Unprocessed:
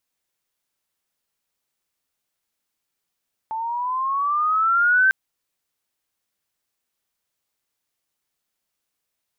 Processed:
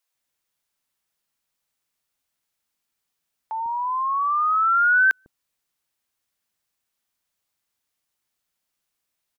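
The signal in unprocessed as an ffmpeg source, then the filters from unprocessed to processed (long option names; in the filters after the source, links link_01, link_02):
-f lavfi -i "aevalsrc='pow(10,(-12.5+12*(t/1.6-1))/20)*sin(2*PI*877*1.6/(10*log(2)/12)*(exp(10*log(2)/12*t/1.6)-1))':duration=1.6:sample_rate=44100"
-filter_complex "[0:a]acrossover=split=420[link_01][link_02];[link_01]adelay=150[link_03];[link_03][link_02]amix=inputs=2:normalize=0"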